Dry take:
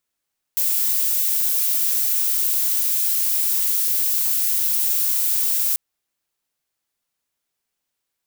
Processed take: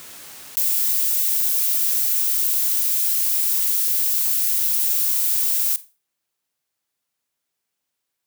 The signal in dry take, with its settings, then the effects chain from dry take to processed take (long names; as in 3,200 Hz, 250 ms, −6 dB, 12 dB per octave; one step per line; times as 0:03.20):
noise violet, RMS −20 dBFS 5.19 s
high-pass filter 71 Hz
four-comb reverb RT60 0.31 s, combs from 28 ms, DRR 18 dB
background raised ahead of every attack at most 29 dB per second